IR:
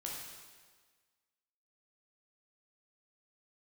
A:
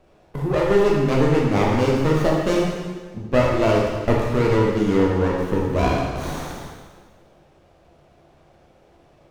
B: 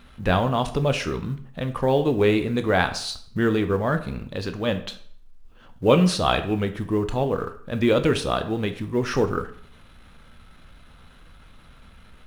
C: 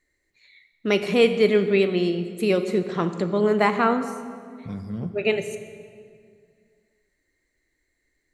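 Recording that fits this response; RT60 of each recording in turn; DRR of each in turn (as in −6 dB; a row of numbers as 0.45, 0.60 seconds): A; 1.5, 0.55, 2.2 seconds; −3.0, 8.0, 9.0 decibels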